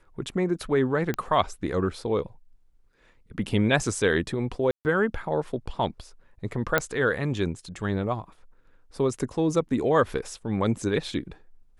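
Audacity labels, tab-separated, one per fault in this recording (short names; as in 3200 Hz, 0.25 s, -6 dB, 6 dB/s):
1.140000	1.140000	pop -15 dBFS
4.710000	4.850000	gap 0.139 s
6.780000	6.780000	pop -7 dBFS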